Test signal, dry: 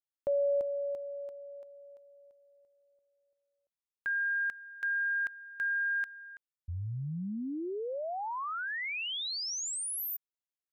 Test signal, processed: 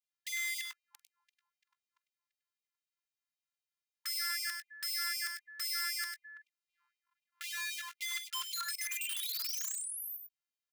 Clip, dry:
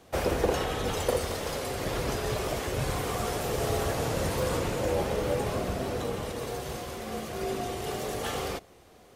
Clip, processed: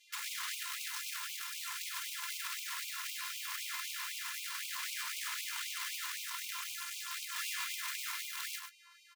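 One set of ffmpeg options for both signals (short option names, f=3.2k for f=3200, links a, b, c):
-filter_complex "[0:a]highpass=f=82:w=0.5412,highpass=f=82:w=1.3066,adynamicequalizer=threshold=0.00562:dfrequency=910:dqfactor=1.1:tfrequency=910:tqfactor=1.1:attack=5:release=100:ratio=0.375:range=2.5:mode=cutabove:tftype=bell,afftfilt=real='hypot(re,im)*cos(PI*b)':imag='0':win_size=512:overlap=0.75,acrossover=split=6800[a][b];[a]acontrast=59[c];[c][b]amix=inputs=2:normalize=0,alimiter=limit=-19.5dB:level=0:latency=1:release=139,equalizer=f=12k:t=o:w=1.7:g=-3.5,aeval=exprs='(mod(47.3*val(0)+1,2)-1)/47.3':c=same,asplit=2[d][e];[e]aecho=0:1:46|100|118:0.133|0.473|0.106[f];[d][f]amix=inputs=2:normalize=0,afftfilt=real='re*gte(b*sr/1024,850*pow(2200/850,0.5+0.5*sin(2*PI*3.9*pts/sr)))':imag='im*gte(b*sr/1024,850*pow(2200/850,0.5+0.5*sin(2*PI*3.9*pts/sr)))':win_size=1024:overlap=0.75"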